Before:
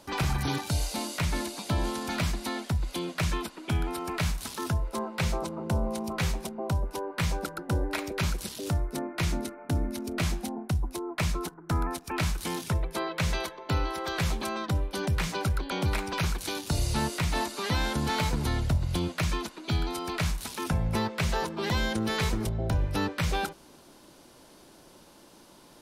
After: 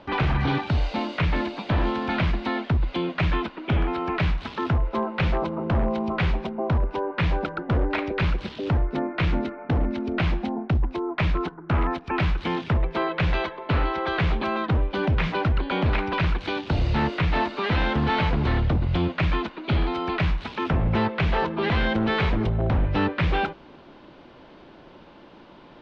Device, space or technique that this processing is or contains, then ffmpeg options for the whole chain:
synthesiser wavefolder: -af "aeval=exprs='0.0708*(abs(mod(val(0)/0.0708+3,4)-2)-1)':c=same,lowpass=f=3.2k:w=0.5412,lowpass=f=3.2k:w=1.3066,volume=7dB"

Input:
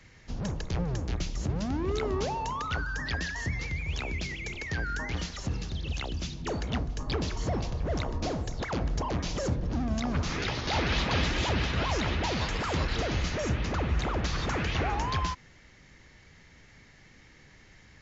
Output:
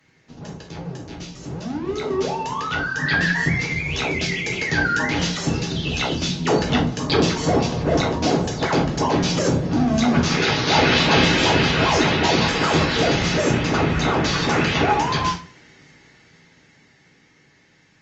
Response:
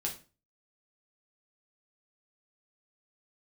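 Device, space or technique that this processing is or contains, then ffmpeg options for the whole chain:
far-field microphone of a smart speaker: -filter_complex "[0:a]asettb=1/sr,asplit=3[a][b][c];[a]atrim=end=3.024[d];[b]atrim=start=3.02:end=3.56,asetpts=PTS-STARTPTS,afade=t=in:d=0.004:c=qsin,afade=t=out:st=0.536:d=0.004:c=qsin,equalizer=f=160:t=o:w=0.67:g=8,equalizer=f=1.6k:t=o:w=0.67:g=7,equalizer=f=6.3k:t=o:w=0.67:g=-6[e];[c]atrim=start=3.556[f];[d][e]acrossfade=d=0.004:c1=hsin:c2=qsin[g];[g][f]acrossfade=d=0.004:c1=qsin:c2=hsin[h];[1:a]atrim=start_sample=2205[i];[h][i]afir=irnorm=-1:irlink=0,highpass=150,dynaudnorm=f=270:g=21:m=16dB,volume=-2dB" -ar 48000 -c:a libopus -b:a 32k

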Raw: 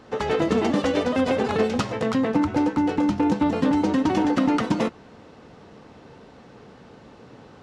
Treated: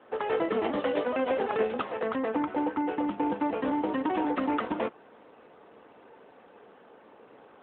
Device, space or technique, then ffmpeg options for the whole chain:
telephone: -af "highpass=390,lowpass=3.2k,volume=-2.5dB" -ar 8000 -c:a libopencore_amrnb -b:a 12200

